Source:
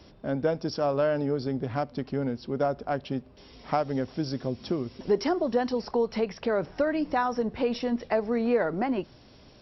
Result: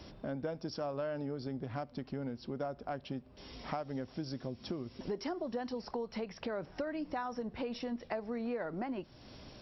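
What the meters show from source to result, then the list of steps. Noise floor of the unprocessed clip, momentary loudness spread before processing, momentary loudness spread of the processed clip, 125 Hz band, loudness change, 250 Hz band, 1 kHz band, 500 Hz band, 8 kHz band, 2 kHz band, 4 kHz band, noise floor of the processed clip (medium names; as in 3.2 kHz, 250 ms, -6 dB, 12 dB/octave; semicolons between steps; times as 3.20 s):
-54 dBFS, 6 LU, 5 LU, -9.5 dB, -11.5 dB, -10.0 dB, -11.5 dB, -12.5 dB, no reading, -10.5 dB, -8.0 dB, -57 dBFS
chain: peaking EQ 430 Hz -3 dB 0.3 oct; compression 2.5:1, threshold -43 dBFS, peak gain reduction 14.5 dB; trim +1.5 dB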